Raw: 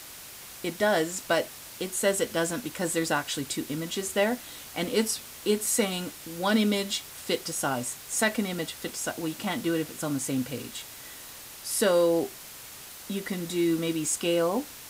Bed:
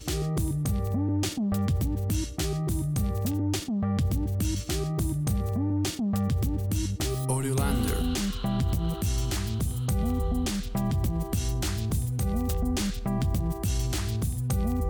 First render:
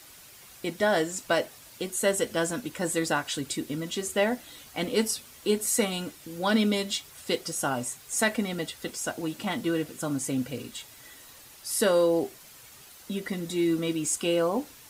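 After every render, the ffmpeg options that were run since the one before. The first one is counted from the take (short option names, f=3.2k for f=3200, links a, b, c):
-af "afftdn=nr=8:nf=-45"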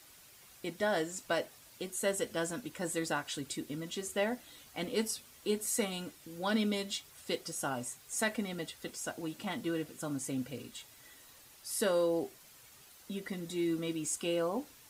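-af "volume=-7.5dB"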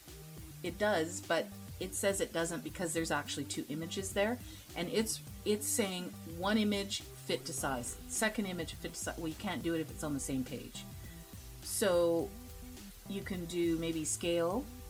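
-filter_complex "[1:a]volume=-22.5dB[a];[0:a][a]amix=inputs=2:normalize=0"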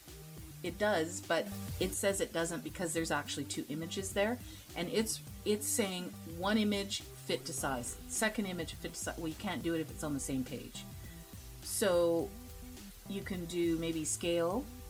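-filter_complex "[0:a]asettb=1/sr,asplit=3[a][b][c];[a]atrim=end=1.464[d];[b]atrim=start=1.46:end=1.94,asetpts=PTS-STARTPTS,afade=t=in:d=0.004:c=qsin,afade=t=out:st=0.476:d=0.004:c=qsin,acontrast=53[e];[c]atrim=start=1.936[f];[d][e]acrossfade=d=0.004:c1=hsin:c2=qsin[g];[g][f]acrossfade=d=0.004:c1=qsin:c2=hsin"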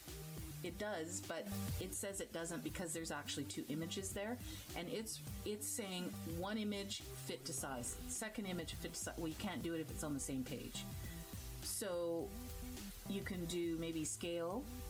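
-af "acompressor=threshold=-36dB:ratio=5,alimiter=level_in=9.5dB:limit=-24dB:level=0:latency=1:release=184,volume=-9.5dB"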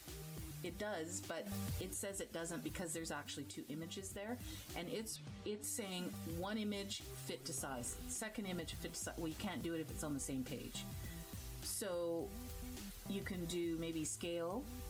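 -filter_complex "[0:a]asettb=1/sr,asplit=3[a][b][c];[a]atrim=end=5.164[d];[b]atrim=start=5.16:end=5.64,asetpts=PTS-STARTPTS,afade=t=in:d=0.004:c=qsin,afade=t=out:st=0.476:d=0.004:c=qsin,highpass=100,lowpass=4.4k[e];[c]atrim=start=5.636[f];[d][e]acrossfade=d=0.004:c1=hsin:c2=qsin[g];[g][f]acrossfade=d=0.004:c1=qsin:c2=hsin,asplit=3[h][i][j];[h]atrim=end=3.242[k];[i]atrim=start=3.238:end=4.292,asetpts=PTS-STARTPTS,volume=-3.5dB[l];[j]atrim=start=4.288[m];[k][l]acrossfade=d=0.004:c1=hsin:c2=hsin[n];[n][m]acrossfade=d=0.004:c1=hsin:c2=hsin"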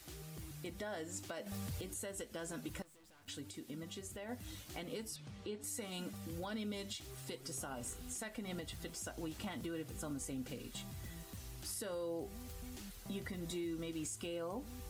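-filter_complex "[0:a]asettb=1/sr,asplit=3[a][b][c];[a]atrim=end=2.824[d];[b]atrim=start=2.82:end=3.28,asetpts=PTS-STARTPTS,afade=t=in:d=0.004:c=qsin,afade=t=out:st=0.456:d=0.004:c=qsin,aeval=exprs='(tanh(1580*val(0)+0.35)-tanh(0.35))/1580':c=same[e];[c]atrim=start=3.276[f];[d][e]acrossfade=d=0.004:c1=hsin:c2=qsin[g];[g][f]acrossfade=d=0.004:c1=qsin:c2=hsin"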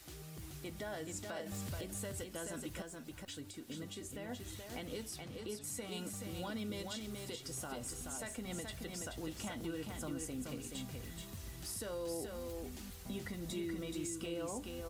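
-af "aecho=1:1:428:0.596"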